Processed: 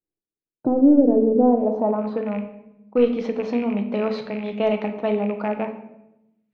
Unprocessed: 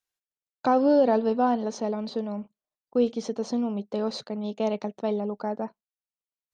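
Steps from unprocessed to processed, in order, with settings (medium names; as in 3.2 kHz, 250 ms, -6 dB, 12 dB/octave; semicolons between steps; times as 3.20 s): rattle on loud lows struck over -36 dBFS, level -35 dBFS; in parallel at -6 dB: overload inside the chain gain 17.5 dB; on the sum: low-pass sweep 350 Hz -> 2.3 kHz, 1.30–2.40 s; simulated room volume 280 m³, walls mixed, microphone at 0.59 m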